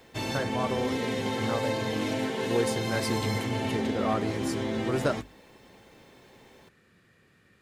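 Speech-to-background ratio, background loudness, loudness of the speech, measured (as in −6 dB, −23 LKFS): −3.0 dB, −30.5 LKFS, −33.5 LKFS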